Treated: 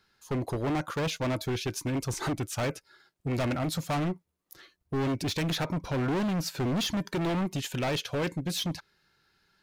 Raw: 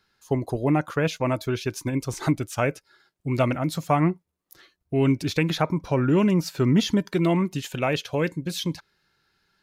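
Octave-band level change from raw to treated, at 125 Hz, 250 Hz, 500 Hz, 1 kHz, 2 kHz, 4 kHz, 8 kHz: -6.0 dB, -7.0 dB, -7.0 dB, -6.0 dB, -5.0 dB, -1.0 dB, -0.5 dB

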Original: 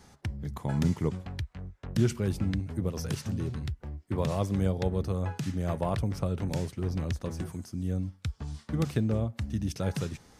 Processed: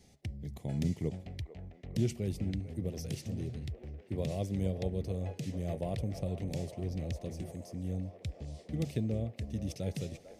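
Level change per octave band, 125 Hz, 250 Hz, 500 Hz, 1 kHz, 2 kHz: -5.5 dB, -5.5 dB, -5.0 dB, -10.5 dB, -9.0 dB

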